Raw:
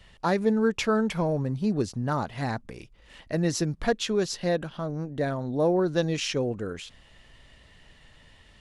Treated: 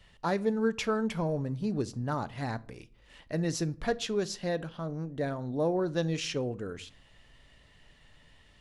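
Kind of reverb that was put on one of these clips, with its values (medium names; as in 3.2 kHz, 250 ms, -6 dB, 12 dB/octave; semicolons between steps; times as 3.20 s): simulated room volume 440 m³, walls furnished, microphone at 0.34 m; trim -5 dB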